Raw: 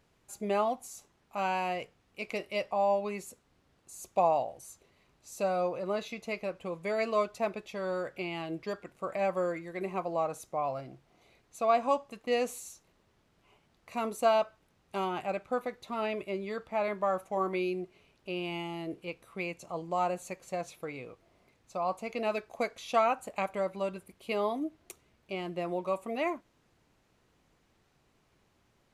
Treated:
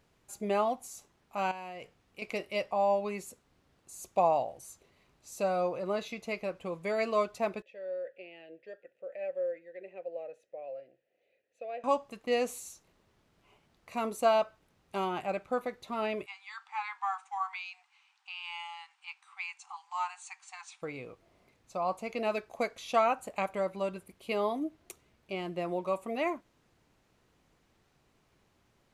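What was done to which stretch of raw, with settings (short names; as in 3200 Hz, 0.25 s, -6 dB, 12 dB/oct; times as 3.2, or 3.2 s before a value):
1.51–2.22 compressor 10:1, threshold -39 dBFS
7.62–11.84 vowel filter e
16.26–20.82 brick-wall FIR band-pass 740–9500 Hz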